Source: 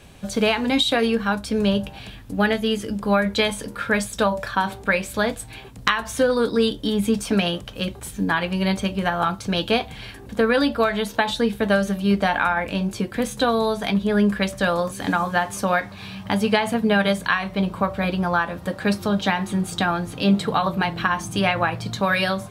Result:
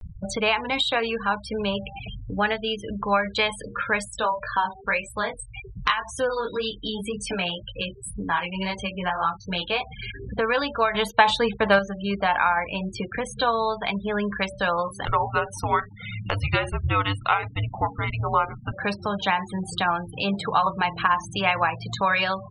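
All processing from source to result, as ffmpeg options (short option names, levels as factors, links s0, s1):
-filter_complex "[0:a]asettb=1/sr,asplit=3[s0][s1][s2];[s0]atrim=end=4.054[s3];[s1]atrim=start=4.05:end=9.83,asetpts=PTS-STARTPTS,afade=t=in:d=0.004:c=qsin,afade=t=out:st=5.776:d=0.004:c=qsin,highshelf=f=3400:g=3,flanger=delay=18.5:depth=4.1:speed=1.9[s4];[s2]atrim=start=9.826[s5];[s3][s4]acrossfade=d=0.004:c1=hsin:c2=qsin[s6];[s6][s5]acrossfade=d=0.004:c1=qsin:c2=hsin,asettb=1/sr,asplit=3[s7][s8][s9];[s7]atrim=end=10.944[s10];[s8]atrim=start=10.94:end=11.79,asetpts=PTS-STARTPTS,afade=t=in:d=0.004:c=qsin,afade=t=out:st=0.846:d=0.004:c=qsin,agate=range=0.447:threshold=0.0178:ratio=16:release=100:detection=peak,acontrast=44[s11];[s9]atrim=start=11.786[s12];[s10][s11]acrossfade=d=0.004:c1=hsin:c2=qsin[s13];[s13][s12]acrossfade=d=0.004:c1=qsin:c2=hsin,asettb=1/sr,asplit=3[s14][s15][s16];[s14]atrim=end=15.054[s17];[s15]atrim=start=15.05:end=18.73,asetpts=PTS-STARTPTS,afade=t=in:d=0.004:c=qsin,afade=t=out:st=3.676:d=0.004:c=qsin,bandreject=f=7600:w=11,afreqshift=-300[s18];[s16]atrim=start=18.726[s19];[s17][s18]acrossfade=d=0.004:c1=hsin:c2=qsin[s20];[s20][s19]acrossfade=d=0.004:c1=qsin:c2=hsin,afftfilt=real='re*gte(hypot(re,im),0.0316)':imag='im*gte(hypot(re,im),0.0316)':win_size=1024:overlap=0.75,equalizer=f=250:t=o:w=0.67:g=-9,equalizer=f=1000:t=o:w=0.67:g=9,equalizer=f=2500:t=o:w=0.67:g=6,acompressor=mode=upward:threshold=0.126:ratio=2.5,volume=0.562"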